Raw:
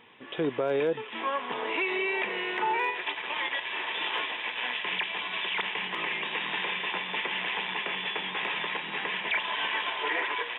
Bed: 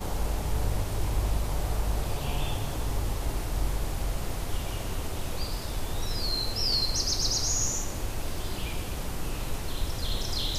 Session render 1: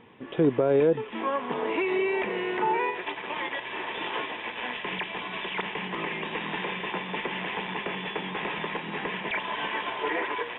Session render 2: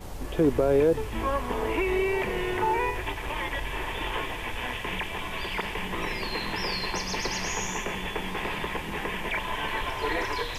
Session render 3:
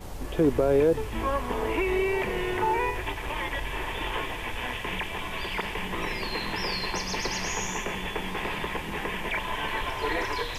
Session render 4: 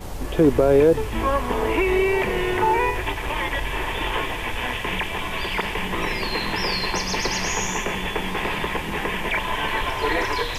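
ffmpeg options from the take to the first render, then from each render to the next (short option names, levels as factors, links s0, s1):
-af "lowpass=f=2100:p=1,lowshelf=f=470:g=11"
-filter_complex "[1:a]volume=0.422[s0];[0:a][s0]amix=inputs=2:normalize=0"
-af anull
-af "volume=2"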